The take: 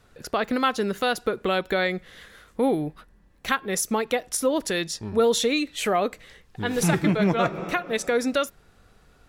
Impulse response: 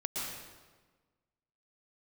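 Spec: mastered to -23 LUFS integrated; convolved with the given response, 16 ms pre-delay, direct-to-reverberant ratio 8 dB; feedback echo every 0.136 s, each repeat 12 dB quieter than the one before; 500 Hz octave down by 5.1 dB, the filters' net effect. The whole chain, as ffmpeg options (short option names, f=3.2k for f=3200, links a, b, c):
-filter_complex "[0:a]equalizer=f=500:t=o:g=-6,aecho=1:1:136|272|408:0.251|0.0628|0.0157,asplit=2[a][b];[1:a]atrim=start_sample=2205,adelay=16[c];[b][c]afir=irnorm=-1:irlink=0,volume=-12dB[d];[a][d]amix=inputs=2:normalize=0,volume=3dB"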